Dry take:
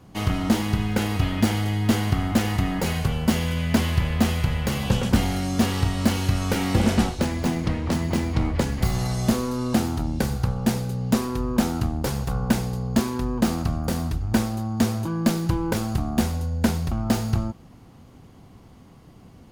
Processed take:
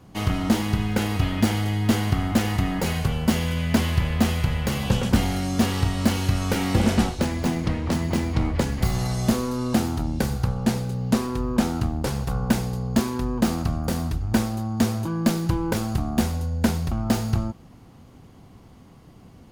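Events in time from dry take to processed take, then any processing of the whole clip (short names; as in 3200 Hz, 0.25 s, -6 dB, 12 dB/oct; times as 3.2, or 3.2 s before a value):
10.63–12.28 decimation joined by straight lines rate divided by 2×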